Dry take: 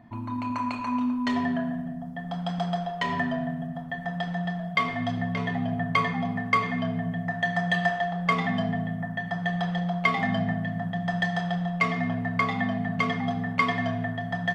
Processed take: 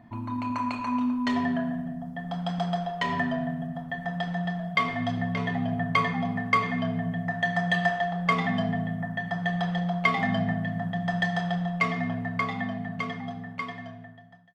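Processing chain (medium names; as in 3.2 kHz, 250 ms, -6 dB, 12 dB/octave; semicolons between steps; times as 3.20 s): fade out at the end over 3.03 s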